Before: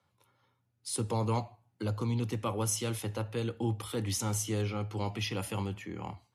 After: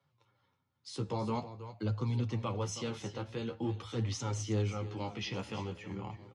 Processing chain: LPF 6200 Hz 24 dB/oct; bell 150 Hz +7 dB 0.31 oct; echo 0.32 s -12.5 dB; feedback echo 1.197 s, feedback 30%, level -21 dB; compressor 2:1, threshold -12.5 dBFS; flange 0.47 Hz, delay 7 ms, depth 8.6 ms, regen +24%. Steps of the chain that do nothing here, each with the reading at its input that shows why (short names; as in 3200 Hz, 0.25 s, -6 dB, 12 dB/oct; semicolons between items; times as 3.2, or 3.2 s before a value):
compressor, threshold -12.5 dBFS: input peak -18.5 dBFS